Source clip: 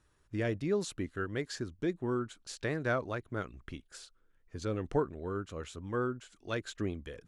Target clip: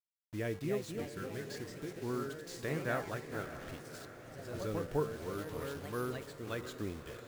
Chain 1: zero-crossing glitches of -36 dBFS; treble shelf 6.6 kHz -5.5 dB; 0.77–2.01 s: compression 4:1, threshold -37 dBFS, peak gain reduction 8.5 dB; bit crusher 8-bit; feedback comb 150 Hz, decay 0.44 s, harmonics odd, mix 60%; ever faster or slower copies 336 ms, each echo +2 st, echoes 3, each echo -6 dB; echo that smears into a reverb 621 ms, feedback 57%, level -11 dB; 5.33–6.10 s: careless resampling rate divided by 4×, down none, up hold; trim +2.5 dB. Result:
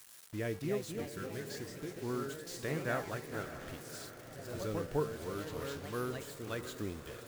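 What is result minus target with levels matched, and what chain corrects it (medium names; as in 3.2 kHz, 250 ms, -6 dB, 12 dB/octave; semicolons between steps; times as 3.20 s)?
zero-crossing glitches: distortion +11 dB
zero-crossing glitches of -47.5 dBFS; treble shelf 6.6 kHz -5.5 dB; 0.77–2.01 s: compression 4:1, threshold -37 dBFS, peak gain reduction 8.5 dB; bit crusher 8-bit; feedback comb 150 Hz, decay 0.44 s, harmonics odd, mix 60%; ever faster or slower copies 336 ms, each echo +2 st, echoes 3, each echo -6 dB; echo that smears into a reverb 621 ms, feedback 57%, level -11 dB; 5.33–6.10 s: careless resampling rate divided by 4×, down none, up hold; trim +2.5 dB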